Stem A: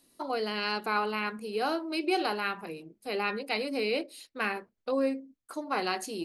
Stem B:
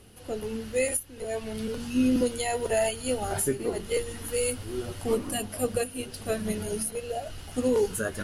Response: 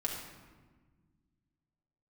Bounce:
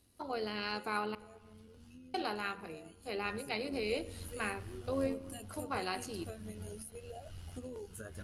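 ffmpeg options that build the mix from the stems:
-filter_complex "[0:a]volume=-6.5dB,asplit=3[a][b][c];[a]atrim=end=1.15,asetpts=PTS-STARTPTS,afade=t=out:st=1.146:d=0.004:c=hsin[d];[b]atrim=start=1.15:end=2.14,asetpts=PTS-STARTPTS,volume=0[e];[c]atrim=start=2.14,asetpts=PTS-STARTPTS,afade=t=in:d=0.004:c=hsin[f];[d][e][f]concat=n=3:v=0:a=1,asplit=2[g][h];[h]volume=-15.5dB[i];[1:a]bandreject=f=1.8k:w=29,acompressor=threshold=-32dB:ratio=5,volume=-10.5dB,afade=t=in:st=3.16:d=0.75:silence=0.281838[j];[2:a]atrim=start_sample=2205[k];[i][k]afir=irnorm=-1:irlink=0[l];[g][j][l]amix=inputs=3:normalize=0,equalizer=f=75:w=1.3:g=12,tremolo=f=87:d=0.4"

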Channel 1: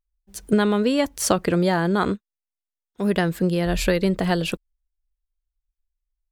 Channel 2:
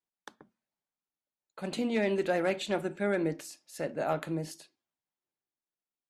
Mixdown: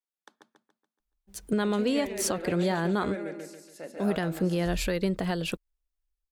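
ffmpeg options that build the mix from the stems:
-filter_complex "[0:a]adelay=1000,volume=-5dB[a];[1:a]highpass=200,volume=-6.5dB,asplit=2[b][c];[c]volume=-4dB,aecho=0:1:142|284|426|568|710|852:1|0.42|0.176|0.0741|0.0311|0.0131[d];[a][b][d]amix=inputs=3:normalize=0,alimiter=limit=-16.5dB:level=0:latency=1:release=174"

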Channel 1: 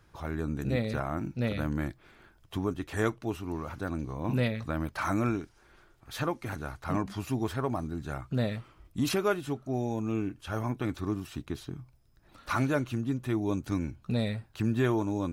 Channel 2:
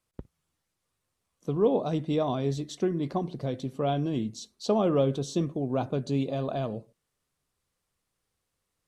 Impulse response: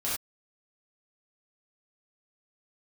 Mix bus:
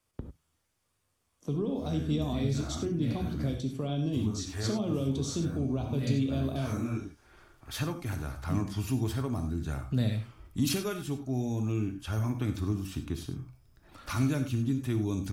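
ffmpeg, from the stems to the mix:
-filter_complex "[0:a]adelay=1600,volume=1.5dB,asplit=2[a][b];[b]volume=-11dB[c];[1:a]alimiter=limit=-20dB:level=0:latency=1:release=118,volume=0dB,asplit=3[d][e][f];[e]volume=-7.5dB[g];[f]apad=whole_len=746504[h];[a][h]sidechaincompress=threshold=-49dB:ratio=8:attack=16:release=547[i];[2:a]atrim=start_sample=2205[j];[c][g]amix=inputs=2:normalize=0[k];[k][j]afir=irnorm=-1:irlink=0[l];[i][d][l]amix=inputs=3:normalize=0,acrossover=split=260|3000[m][n][o];[n]acompressor=threshold=-48dB:ratio=2[p];[m][p][o]amix=inputs=3:normalize=0,bandreject=f=4k:w=21"

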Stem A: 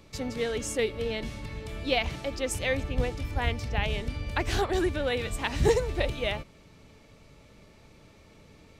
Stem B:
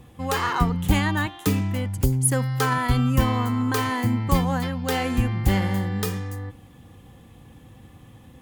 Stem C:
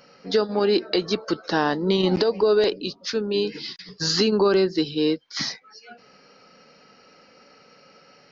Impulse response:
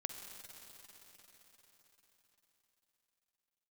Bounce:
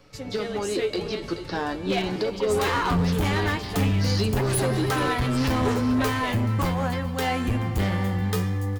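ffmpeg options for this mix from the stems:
-filter_complex "[0:a]highshelf=f=9.9k:g=7,aecho=1:1:7.1:0.48,volume=-1dB,asplit=2[a][b];[b]volume=-7.5dB[c];[1:a]adelay=2300,volume=2.5dB,asplit=3[d][e][f];[e]volume=-9.5dB[g];[f]volume=-19dB[h];[2:a]volume=-5dB,asplit=3[i][j][k];[j]volume=-6dB[l];[k]volume=-8.5dB[m];[3:a]atrim=start_sample=2205[n];[c][g][l]amix=inputs=3:normalize=0[o];[o][n]afir=irnorm=-1:irlink=0[p];[h][m]amix=inputs=2:normalize=0,aecho=0:1:429:1[q];[a][d][i][p][q]amix=inputs=5:normalize=0,highshelf=f=6k:g=-4.5,asoftclip=type=hard:threshold=-15.5dB,flanger=delay=9.4:depth=2.5:regen=47:speed=0.44:shape=sinusoidal"

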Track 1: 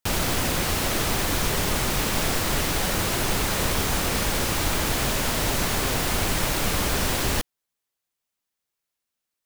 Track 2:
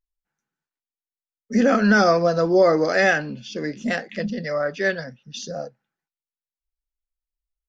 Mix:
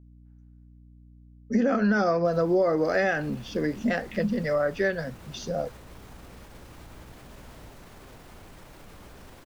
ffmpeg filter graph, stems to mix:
-filter_complex "[0:a]alimiter=limit=-20.5dB:level=0:latency=1:release=71,adelay=2200,volume=-15.5dB[a];[1:a]aeval=exprs='val(0)+0.00251*(sin(2*PI*60*n/s)+sin(2*PI*2*60*n/s)/2+sin(2*PI*3*60*n/s)/3+sin(2*PI*4*60*n/s)/4+sin(2*PI*5*60*n/s)/5)':c=same,volume=2dB[b];[a][b]amix=inputs=2:normalize=0,highshelf=f=2.2k:g=-9.5,acompressor=threshold=-21dB:ratio=4"

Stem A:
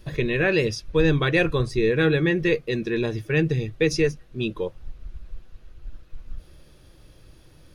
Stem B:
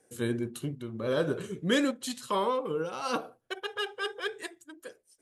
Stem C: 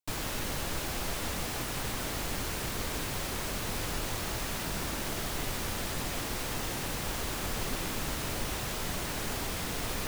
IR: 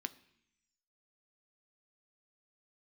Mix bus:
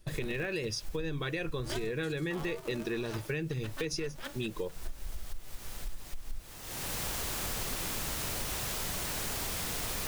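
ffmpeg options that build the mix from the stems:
-filter_complex "[0:a]equalizer=f=85:w=0.31:g=-7,agate=range=-10dB:threshold=-44dB:ratio=16:detection=peak,lowshelf=f=280:g=7,volume=-3.5dB,asplit=2[a][b];[1:a]aeval=exprs='val(0)*sgn(sin(2*PI*140*n/s))':c=same,volume=-10dB,asplit=3[c][d][e];[c]atrim=end=0.65,asetpts=PTS-STARTPTS,afade=t=out:st=0.646:d=0.004:c=hsin[f];[d]atrim=start=0.65:end=1.58,asetpts=PTS-STARTPTS,volume=0[g];[e]atrim=start=1.58,asetpts=PTS-STARTPTS,afade=t=in:d=0.004:c=hsin[h];[f][g][h]concat=n=3:v=0:a=1[i];[2:a]equalizer=f=270:w=1.5:g=-3,volume=-1dB,afade=t=in:st=6.63:d=0.4:silence=0.316228[j];[b]apad=whole_len=444462[k];[j][k]sidechaincompress=threshold=-37dB:ratio=5:attack=16:release=425[l];[a][i]amix=inputs=2:normalize=0,alimiter=limit=-20dB:level=0:latency=1:release=147,volume=0dB[m];[l][m]amix=inputs=2:normalize=0,highshelf=f=4.4k:g=6.5,acompressor=threshold=-31dB:ratio=6"

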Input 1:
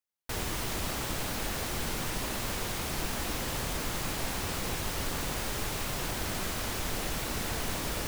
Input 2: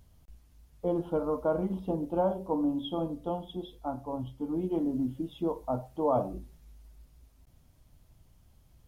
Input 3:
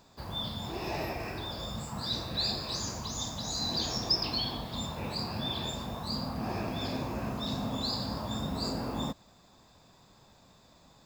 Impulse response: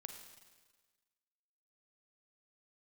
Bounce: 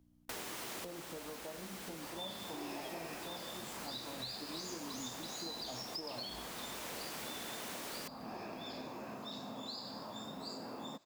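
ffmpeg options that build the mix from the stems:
-filter_complex "[0:a]aeval=exprs='val(0)+0.002*(sin(2*PI*60*n/s)+sin(2*PI*2*60*n/s)/2+sin(2*PI*3*60*n/s)/3+sin(2*PI*4*60*n/s)/4+sin(2*PI*5*60*n/s)/5)':c=same,volume=-2.5dB[a];[1:a]acompressor=threshold=-30dB:ratio=6,volume=-14.5dB,asplit=2[b][c];[2:a]adelay=1850,volume=-7dB[d];[c]apad=whole_len=356165[e];[a][e]sidechaincompress=threshold=-55dB:ratio=8:attack=16:release=975[f];[f][d]amix=inputs=2:normalize=0,highpass=250,acompressor=threshold=-41dB:ratio=6,volume=0dB[g];[b][g]amix=inputs=2:normalize=0"

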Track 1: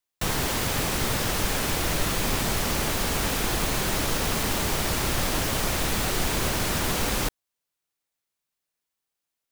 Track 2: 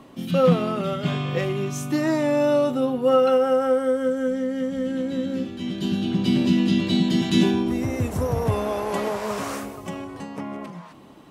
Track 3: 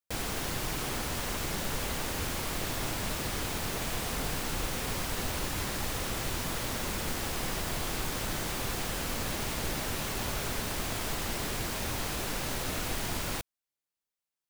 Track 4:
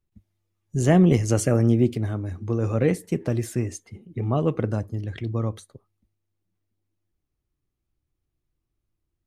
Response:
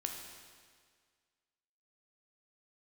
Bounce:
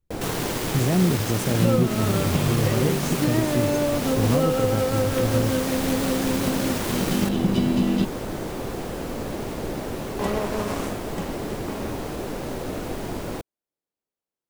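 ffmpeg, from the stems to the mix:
-filter_complex "[0:a]highpass=f=110:w=0.5412,highpass=f=110:w=1.3066,volume=0.5dB[a];[1:a]adelay=1300,volume=1dB,asplit=3[b][c][d];[b]atrim=end=8.05,asetpts=PTS-STARTPTS,afade=t=out:st=8.046:d=0.004:c=hsin[e];[c]atrim=start=8.05:end=10.19,asetpts=PTS-STARTPTS,volume=0[f];[d]atrim=start=10.19,asetpts=PTS-STARTPTS,afade=t=in:d=0.004:c=hsin[g];[e][f][g]concat=n=3:v=0:a=1[h];[2:a]equalizer=f=420:t=o:w=2.7:g=14,volume=-6.5dB[i];[3:a]volume=-2dB[j];[i][j]amix=inputs=2:normalize=0,alimiter=limit=-16.5dB:level=0:latency=1:release=458,volume=0dB[k];[a][h]amix=inputs=2:normalize=0,aeval=exprs='sgn(val(0))*max(abs(val(0))-0.0237,0)':c=same,acompressor=threshold=-22dB:ratio=6,volume=0dB[l];[k][l]amix=inputs=2:normalize=0,lowshelf=f=330:g=6.5"

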